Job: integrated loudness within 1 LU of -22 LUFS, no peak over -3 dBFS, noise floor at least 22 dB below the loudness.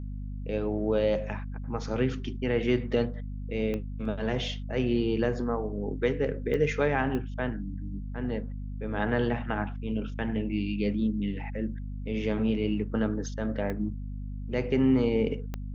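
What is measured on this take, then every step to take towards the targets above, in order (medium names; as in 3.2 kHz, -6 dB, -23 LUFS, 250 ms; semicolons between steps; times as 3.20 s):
clicks found 5; hum 50 Hz; highest harmonic 250 Hz; hum level -33 dBFS; loudness -30.0 LUFS; peak level -13.0 dBFS; loudness target -22.0 LUFS
-> de-click; hum notches 50/100/150/200/250 Hz; trim +8 dB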